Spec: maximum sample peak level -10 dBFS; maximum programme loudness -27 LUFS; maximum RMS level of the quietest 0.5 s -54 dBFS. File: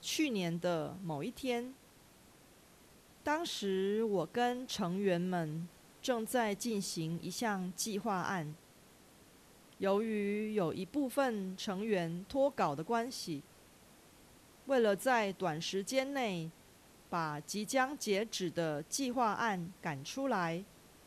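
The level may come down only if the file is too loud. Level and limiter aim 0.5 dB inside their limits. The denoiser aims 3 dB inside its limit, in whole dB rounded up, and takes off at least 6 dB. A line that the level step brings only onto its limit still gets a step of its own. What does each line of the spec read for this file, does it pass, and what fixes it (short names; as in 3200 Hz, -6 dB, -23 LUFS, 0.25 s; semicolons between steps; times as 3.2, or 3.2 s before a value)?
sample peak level -18.5 dBFS: OK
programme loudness -36.0 LUFS: OK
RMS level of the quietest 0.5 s -62 dBFS: OK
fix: none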